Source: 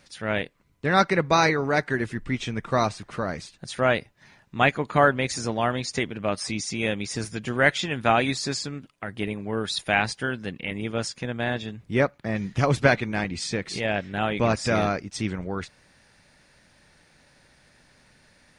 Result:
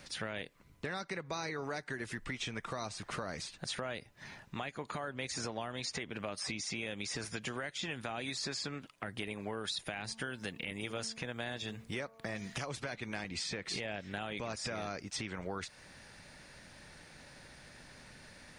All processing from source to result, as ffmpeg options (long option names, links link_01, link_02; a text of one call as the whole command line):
ffmpeg -i in.wav -filter_complex "[0:a]asettb=1/sr,asplit=3[link_01][link_02][link_03];[link_01]atrim=end=9.824[link_04];[link_02]atrim=start=9.82:end=12.66,asetpts=PTS-STARTPTS,afade=type=in:duration=0.004:curve=qsin,afade=type=out:start_time=2.836:duration=0.004:curve=qsin,highshelf=frequency=7000:gain=7,bandreject=frequency=224.2:width_type=h:width=4,bandreject=frequency=448.4:width_type=h:width=4,bandreject=frequency=672.6:width_type=h:width=4,bandreject=frequency=896.8:width_type=h:width=4,bandreject=frequency=1121:width_type=h:width=4[link_05];[link_03]atrim=start=12.656[link_06];[link_04][link_05]acrossfade=duration=0.004:curve1=hsin:curve2=qsin[link_07];[link_07][link_06]acrossfade=duration=0.004:curve1=qsin:curve2=hsin,acompressor=threshold=-27dB:ratio=4,alimiter=limit=-22dB:level=0:latency=1:release=220,acrossover=split=500|4100[link_08][link_09][link_10];[link_08]acompressor=threshold=-48dB:ratio=4[link_11];[link_09]acompressor=threshold=-44dB:ratio=4[link_12];[link_10]acompressor=threshold=-48dB:ratio=4[link_13];[link_11][link_12][link_13]amix=inputs=3:normalize=0,volume=3.5dB" out.wav